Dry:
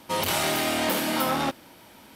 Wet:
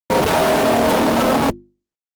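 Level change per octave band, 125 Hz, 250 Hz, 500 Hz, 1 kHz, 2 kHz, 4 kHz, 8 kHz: +10.5, +11.0, +13.0, +9.5, +6.0, +2.5, +2.0 decibels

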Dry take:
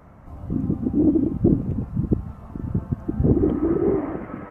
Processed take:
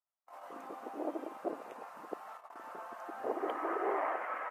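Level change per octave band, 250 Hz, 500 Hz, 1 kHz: −24.5, −12.5, +2.5 decibels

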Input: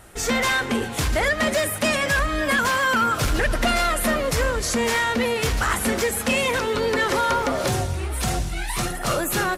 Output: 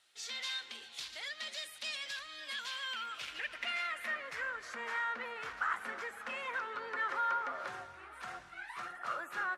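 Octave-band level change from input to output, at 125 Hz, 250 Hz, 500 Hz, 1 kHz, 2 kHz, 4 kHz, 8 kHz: below −35 dB, −33.0 dB, −26.0 dB, −15.0 dB, −14.5 dB, −13.5 dB, −24.0 dB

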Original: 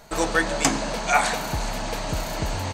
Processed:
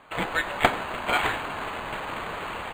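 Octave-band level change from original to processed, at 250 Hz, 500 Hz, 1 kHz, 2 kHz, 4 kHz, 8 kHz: −7.5, −4.5, −2.0, −1.5, −3.5, −17.0 decibels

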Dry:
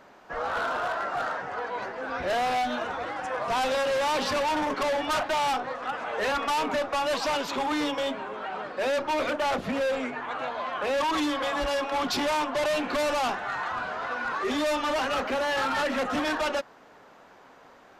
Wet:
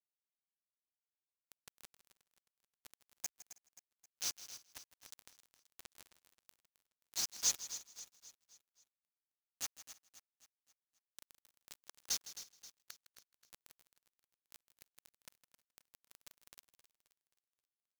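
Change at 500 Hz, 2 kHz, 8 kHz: below −40 dB, −30.5 dB, −0.5 dB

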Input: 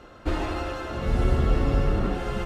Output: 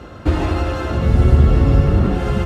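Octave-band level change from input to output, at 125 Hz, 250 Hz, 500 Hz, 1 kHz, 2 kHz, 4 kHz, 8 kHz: +12.5 dB, +9.5 dB, +7.0 dB, +6.0 dB, +5.5 dB, +5.5 dB, can't be measured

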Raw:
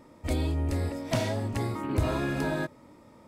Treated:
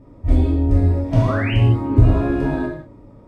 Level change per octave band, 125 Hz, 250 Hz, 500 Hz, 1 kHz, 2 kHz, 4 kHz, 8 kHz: +14.5 dB, +11.0 dB, +7.5 dB, +6.5 dB, +6.5 dB, +4.0 dB, can't be measured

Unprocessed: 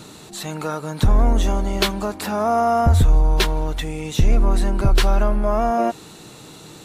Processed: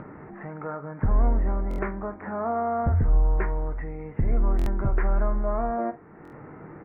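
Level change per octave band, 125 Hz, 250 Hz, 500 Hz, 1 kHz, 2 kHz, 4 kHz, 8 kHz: −6.5 dB, −8.0 dB, −8.0 dB, −8.5 dB, −9.5 dB, below −30 dB, below −30 dB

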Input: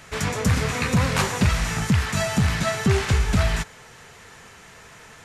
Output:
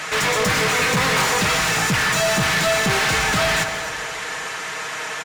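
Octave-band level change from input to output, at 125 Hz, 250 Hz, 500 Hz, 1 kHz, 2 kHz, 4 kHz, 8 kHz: −5.5, −2.0, +6.0, +8.0, +9.5, +9.5, +8.0 decibels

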